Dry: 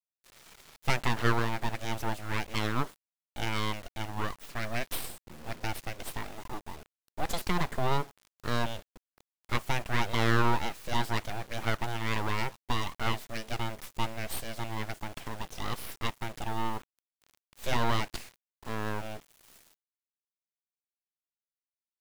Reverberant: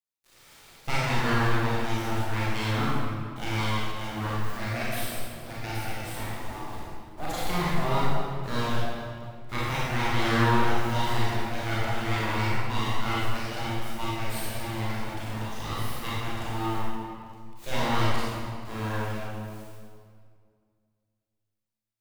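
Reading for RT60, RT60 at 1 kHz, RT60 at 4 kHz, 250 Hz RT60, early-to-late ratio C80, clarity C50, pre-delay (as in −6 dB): 2.1 s, 2.0 s, 1.5 s, 2.4 s, −1.5 dB, −4.5 dB, 28 ms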